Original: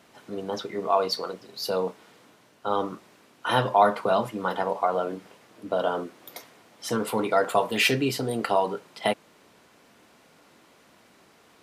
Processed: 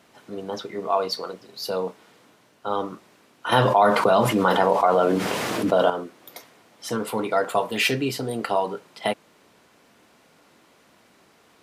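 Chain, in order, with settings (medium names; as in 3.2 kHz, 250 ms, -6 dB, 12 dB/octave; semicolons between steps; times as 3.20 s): 3.52–5.90 s: level flattener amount 70%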